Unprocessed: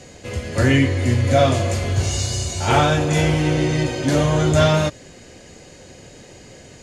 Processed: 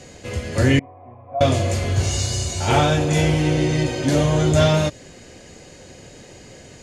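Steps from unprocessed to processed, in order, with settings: 0.79–1.41 vocal tract filter a; dynamic EQ 1300 Hz, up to -4 dB, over -32 dBFS, Q 1.3

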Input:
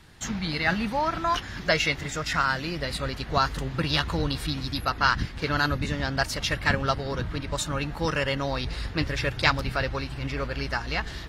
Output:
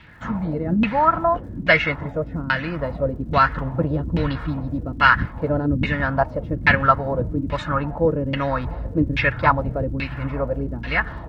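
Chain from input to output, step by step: LFO low-pass saw down 1.2 Hz 240–2700 Hz; crackle 160/s -56 dBFS; notch comb 390 Hz; gain +5.5 dB

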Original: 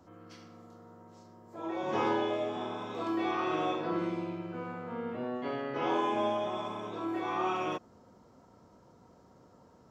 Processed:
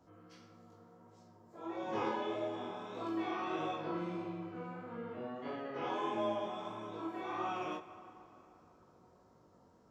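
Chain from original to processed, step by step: chorus 1.6 Hz, delay 17.5 ms, depth 5.7 ms; plate-style reverb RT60 3.9 s, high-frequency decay 0.6×, DRR 12 dB; gain -3.5 dB

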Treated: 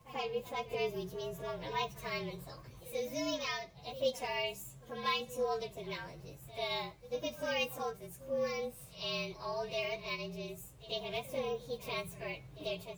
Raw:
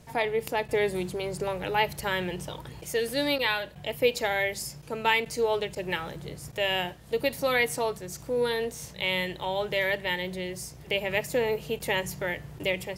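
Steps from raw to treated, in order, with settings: inharmonic rescaling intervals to 112%; pre-echo 91 ms -16.5 dB; gain -7.5 dB

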